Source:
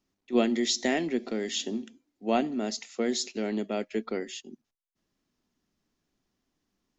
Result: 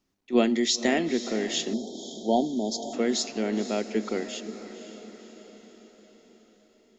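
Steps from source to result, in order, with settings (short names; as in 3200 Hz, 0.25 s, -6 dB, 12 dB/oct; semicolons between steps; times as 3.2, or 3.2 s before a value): diffused feedback echo 0.516 s, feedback 55%, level -12 dB; spectral delete 1.74–2.93, 950–3100 Hz; gain +2.5 dB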